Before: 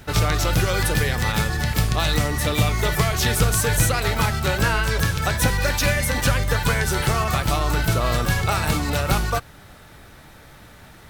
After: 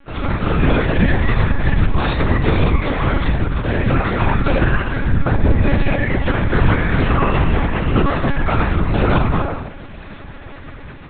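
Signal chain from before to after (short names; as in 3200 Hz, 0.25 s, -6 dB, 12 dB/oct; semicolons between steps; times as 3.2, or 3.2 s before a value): 7.29–7.99 sample sorter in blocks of 16 samples; reverb removal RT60 0.55 s; 4.99–5.57 tilt shelf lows +5.5 dB, about 820 Hz; AGC gain up to 11.5 dB; in parallel at -3 dB: limiter -12 dBFS, peak gain reduction 10.5 dB; 3.15–3.62 on the sum: compressor, threshold -12 dBFS, peak gain reduction 6.5 dB; air absorption 290 m; on a send: thin delay 1 s, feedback 63%, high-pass 2400 Hz, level -15 dB; on the sum: shoebox room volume 530 m³, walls mixed, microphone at 2.2 m; monotone LPC vocoder at 8 kHz 280 Hz; gain -9.5 dB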